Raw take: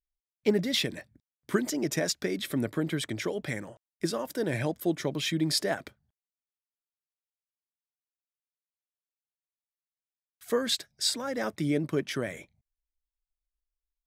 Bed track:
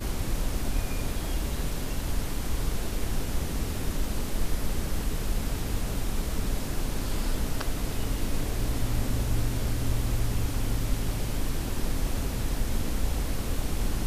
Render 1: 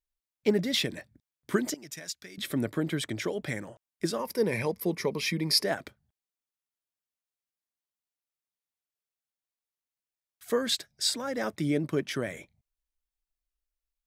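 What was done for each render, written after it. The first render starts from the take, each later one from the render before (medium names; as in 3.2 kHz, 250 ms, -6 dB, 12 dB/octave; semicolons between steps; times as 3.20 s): 1.74–2.38 s: amplifier tone stack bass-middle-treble 5-5-5; 4.19–5.64 s: rippled EQ curve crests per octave 0.86, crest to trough 11 dB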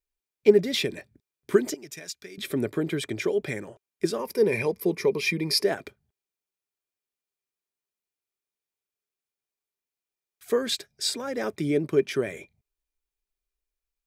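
small resonant body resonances 400/2400 Hz, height 11 dB, ringing for 45 ms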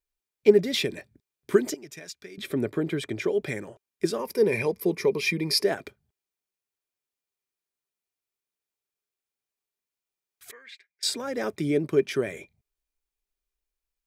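1.79–3.35 s: treble shelf 4 kHz -6 dB; 10.51–11.03 s: band-pass filter 2.1 kHz, Q 7.3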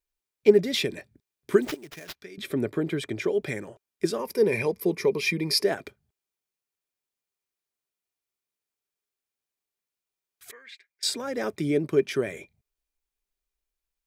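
1.62–2.21 s: sample-rate reducer 8.5 kHz, jitter 20%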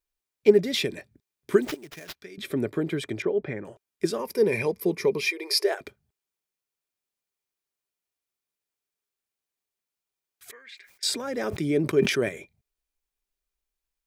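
3.22–3.65 s: low-pass 1.8 kHz; 5.26–5.81 s: brick-wall FIR high-pass 330 Hz; 10.58–12.29 s: decay stretcher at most 82 dB/s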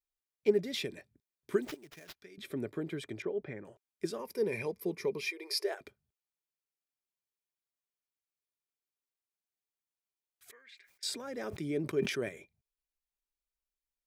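trim -10 dB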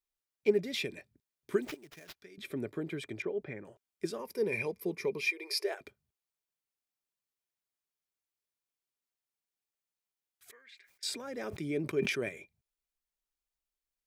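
dynamic bell 2.4 kHz, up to +6 dB, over -57 dBFS, Q 4.4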